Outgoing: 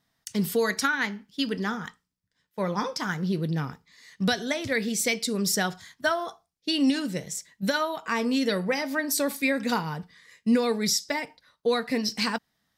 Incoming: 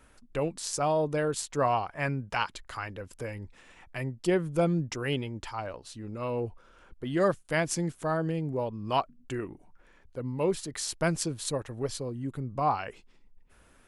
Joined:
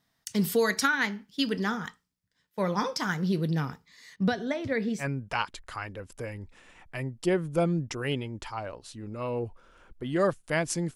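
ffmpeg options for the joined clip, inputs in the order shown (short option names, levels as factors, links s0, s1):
-filter_complex "[0:a]asettb=1/sr,asplit=3[s0][s1][s2];[s0]atrim=end=4.164[s3];[s1]atrim=start=4.16:end=5.06,asetpts=PTS-STARTPTS,afade=t=in:d=0.004:c=qsin,afade=t=out:st=0.896:d=0.004:c=qsin,lowpass=f=1100:p=1[s4];[s2]atrim=start=5.056[s5];[s3][s4]acrossfade=d=0.004:c1=hsin:c2=qsin[s6];[s6][s5]acrossfade=d=0.004:c1=qsin:c2=hsin,apad=whole_dur=10.95,atrim=end=10.95,atrim=end=5.06,asetpts=PTS-STARTPTS[s7];[1:a]atrim=start=1.99:end=7.96,asetpts=PTS-STARTPTS[s8];[s7][s8]acrossfade=d=0.08:c1=tri:c2=tri"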